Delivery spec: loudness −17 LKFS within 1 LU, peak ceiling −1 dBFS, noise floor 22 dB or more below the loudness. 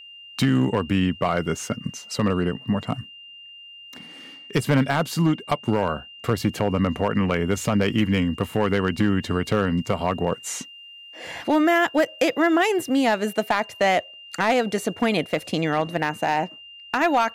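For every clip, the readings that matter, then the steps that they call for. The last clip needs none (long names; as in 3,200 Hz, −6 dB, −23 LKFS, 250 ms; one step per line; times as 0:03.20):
share of clipped samples 0.6%; peaks flattened at −12.0 dBFS; interfering tone 2,800 Hz; level of the tone −41 dBFS; integrated loudness −23.0 LKFS; sample peak −12.0 dBFS; target loudness −17.0 LKFS
→ clipped peaks rebuilt −12 dBFS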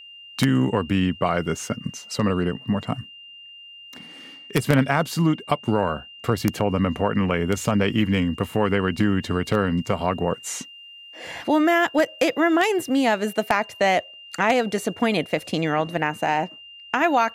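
share of clipped samples 0.0%; interfering tone 2,800 Hz; level of the tone −41 dBFS
→ notch filter 2,800 Hz, Q 30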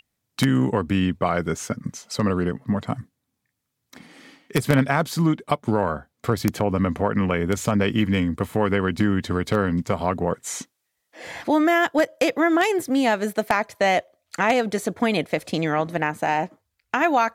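interfering tone none found; integrated loudness −23.0 LKFS; sample peak −2.5 dBFS; target loudness −17.0 LKFS
→ level +6 dB
brickwall limiter −1 dBFS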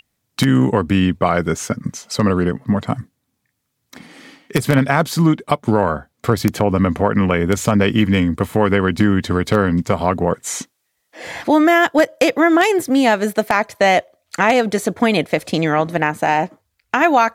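integrated loudness −17.0 LKFS; sample peak −1.0 dBFS; background noise floor −72 dBFS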